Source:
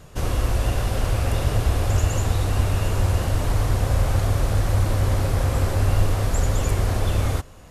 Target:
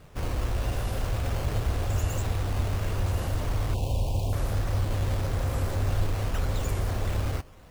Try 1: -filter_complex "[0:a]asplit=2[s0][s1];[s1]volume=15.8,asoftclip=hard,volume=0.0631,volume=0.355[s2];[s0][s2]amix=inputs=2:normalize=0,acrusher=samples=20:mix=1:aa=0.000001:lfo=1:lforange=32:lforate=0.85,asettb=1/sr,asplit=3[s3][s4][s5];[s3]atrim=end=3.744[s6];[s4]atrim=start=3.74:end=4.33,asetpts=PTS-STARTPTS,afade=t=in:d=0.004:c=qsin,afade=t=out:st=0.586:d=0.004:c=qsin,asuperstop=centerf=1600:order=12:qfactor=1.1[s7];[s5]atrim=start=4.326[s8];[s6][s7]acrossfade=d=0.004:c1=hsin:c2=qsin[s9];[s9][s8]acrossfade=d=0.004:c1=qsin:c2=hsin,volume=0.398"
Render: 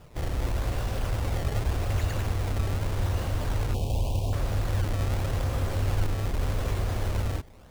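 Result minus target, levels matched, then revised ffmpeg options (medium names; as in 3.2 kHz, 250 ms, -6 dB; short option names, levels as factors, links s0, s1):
decimation with a swept rate: distortion +5 dB
-filter_complex "[0:a]asplit=2[s0][s1];[s1]volume=15.8,asoftclip=hard,volume=0.0631,volume=0.355[s2];[s0][s2]amix=inputs=2:normalize=0,acrusher=samples=7:mix=1:aa=0.000001:lfo=1:lforange=11.2:lforate=0.85,asettb=1/sr,asplit=3[s3][s4][s5];[s3]atrim=end=3.744[s6];[s4]atrim=start=3.74:end=4.33,asetpts=PTS-STARTPTS,afade=t=in:d=0.004:c=qsin,afade=t=out:st=0.586:d=0.004:c=qsin,asuperstop=centerf=1600:order=12:qfactor=1.1[s7];[s5]atrim=start=4.326[s8];[s6][s7]acrossfade=d=0.004:c1=hsin:c2=qsin[s9];[s9][s8]acrossfade=d=0.004:c1=qsin:c2=hsin,volume=0.398"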